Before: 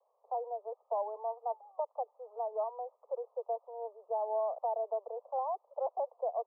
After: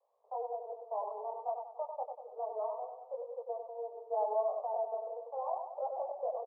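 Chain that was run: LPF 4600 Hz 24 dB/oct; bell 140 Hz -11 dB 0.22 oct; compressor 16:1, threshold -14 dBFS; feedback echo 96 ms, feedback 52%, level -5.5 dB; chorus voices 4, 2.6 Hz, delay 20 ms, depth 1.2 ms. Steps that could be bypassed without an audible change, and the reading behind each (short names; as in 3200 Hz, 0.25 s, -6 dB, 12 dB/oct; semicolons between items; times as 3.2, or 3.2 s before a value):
LPF 4600 Hz: input band ends at 1100 Hz; bell 140 Hz: input band starts at 400 Hz; compressor, threshold -14 dBFS: input peak -23.5 dBFS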